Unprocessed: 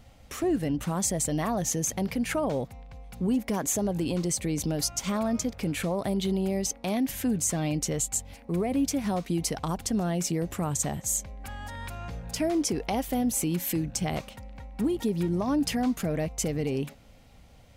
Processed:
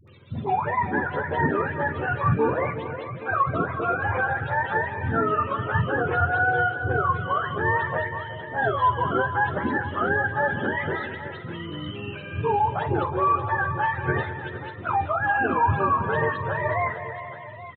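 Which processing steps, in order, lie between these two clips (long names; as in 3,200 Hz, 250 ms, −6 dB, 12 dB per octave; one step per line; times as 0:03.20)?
frequency axis turned over on the octave scale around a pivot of 530 Hz
downsampling to 8,000 Hz
all-pass dispersion highs, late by 77 ms, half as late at 540 Hz
tape wow and flutter 22 cents
on a send: multi-tap delay 47/203/367/455/594/827 ms −14.5/−13.5/−12.5/−15/−18.5/−15 dB
on the sum: level +6.5 dB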